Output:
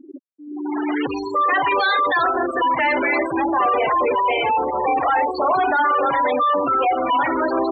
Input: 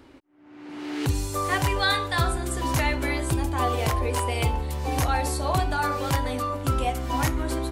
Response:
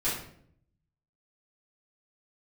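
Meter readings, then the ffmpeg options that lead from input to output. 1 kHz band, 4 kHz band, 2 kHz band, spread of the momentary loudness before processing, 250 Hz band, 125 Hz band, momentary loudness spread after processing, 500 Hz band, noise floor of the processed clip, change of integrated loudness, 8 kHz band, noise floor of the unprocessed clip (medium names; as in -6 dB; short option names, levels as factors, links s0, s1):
+10.5 dB, +0.5 dB, +8.0 dB, 5 LU, +5.5 dB, -19.0 dB, 6 LU, +9.0 dB, -38 dBFS, +7.0 dB, under -25 dB, -51 dBFS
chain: -filter_complex "[0:a]asplit=2[s0][s1];[s1]highpass=f=720:p=1,volume=56.2,asoftclip=type=tanh:threshold=0.316[s2];[s0][s2]amix=inputs=2:normalize=0,lowpass=f=3600:p=1,volume=0.501,afftfilt=real='re*gte(hypot(re,im),0.224)':imag='im*gte(hypot(re,im),0.224)':win_size=1024:overlap=0.75,acrossover=split=240 4500:gain=0.0794 1 0.0708[s3][s4][s5];[s3][s4][s5]amix=inputs=3:normalize=0"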